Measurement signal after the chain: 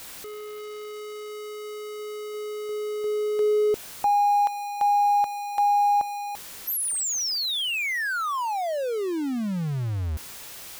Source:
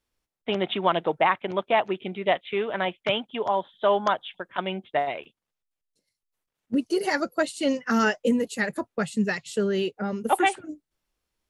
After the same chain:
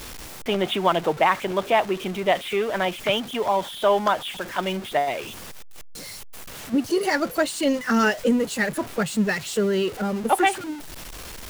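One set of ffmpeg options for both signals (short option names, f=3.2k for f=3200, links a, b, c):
-af "aeval=exprs='val(0)+0.5*0.0237*sgn(val(0))':c=same,volume=1.5dB"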